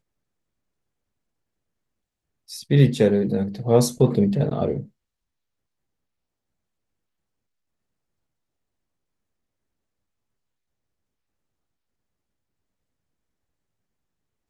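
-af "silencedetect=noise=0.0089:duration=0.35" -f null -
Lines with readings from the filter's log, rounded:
silence_start: 0.00
silence_end: 2.49 | silence_duration: 2.49
silence_start: 4.85
silence_end: 14.50 | silence_duration: 9.64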